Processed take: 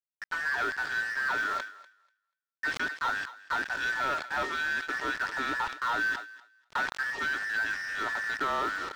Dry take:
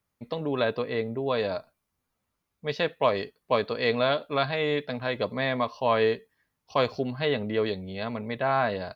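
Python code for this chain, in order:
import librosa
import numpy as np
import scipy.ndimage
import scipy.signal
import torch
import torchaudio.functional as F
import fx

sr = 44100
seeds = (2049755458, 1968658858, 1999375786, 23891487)

y = fx.band_invert(x, sr, width_hz=2000)
y = fx.recorder_agc(y, sr, target_db=-14.0, rise_db_per_s=12.0, max_gain_db=30)
y = scipy.signal.sosfilt(scipy.signal.ellip(4, 1.0, 40, 270.0, 'highpass', fs=sr, output='sos'), y)
y = fx.high_shelf(y, sr, hz=2600.0, db=-5.5)
y = 10.0 ** (-23.5 / 20.0) * np.tanh(y / 10.0 ** (-23.5 / 20.0))
y = fx.quant_dither(y, sr, seeds[0], bits=6, dither='none')
y = fx.air_absorb(y, sr, metres=130.0)
y = fx.echo_thinned(y, sr, ms=243, feedback_pct=17, hz=700.0, wet_db=-18.5)
y = fx.quant_float(y, sr, bits=4)
y = fx.sustainer(y, sr, db_per_s=120.0)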